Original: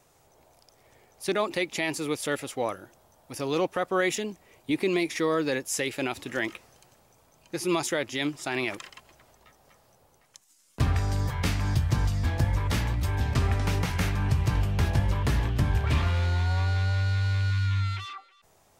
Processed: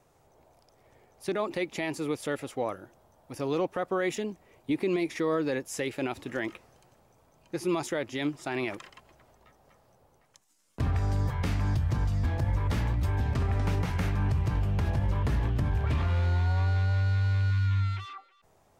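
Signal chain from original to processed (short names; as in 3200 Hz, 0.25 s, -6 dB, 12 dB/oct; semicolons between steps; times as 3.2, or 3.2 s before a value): high shelf 2000 Hz -9 dB; limiter -19.5 dBFS, peak gain reduction 7 dB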